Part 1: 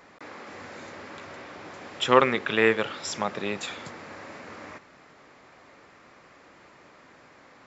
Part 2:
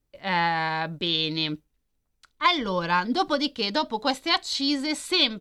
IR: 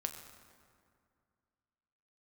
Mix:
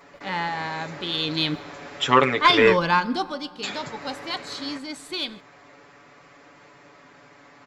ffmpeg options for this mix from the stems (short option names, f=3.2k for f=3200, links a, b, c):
-filter_complex "[0:a]aecho=1:1:7:0.92,volume=0dB,asplit=3[a][b][c];[a]atrim=end=2.77,asetpts=PTS-STARTPTS,afade=t=out:st=2.766:d=0.004:c=hsin[d];[b]atrim=start=2.77:end=3.63,asetpts=PTS-STARTPTS,volume=0[e];[c]atrim=start=3.63,asetpts=PTS-STARTPTS,afade=t=in:d=0.004:c=hsin[f];[d][e][f]concat=n=3:v=0:a=1[g];[1:a]acontrast=52,volume=-4.5dB,afade=t=in:st=1.09:d=0.45:silence=0.398107,afade=t=out:st=2.86:d=0.46:silence=0.251189,asplit=2[h][i];[i]volume=-6.5dB[j];[2:a]atrim=start_sample=2205[k];[j][k]afir=irnorm=-1:irlink=0[l];[g][h][l]amix=inputs=3:normalize=0"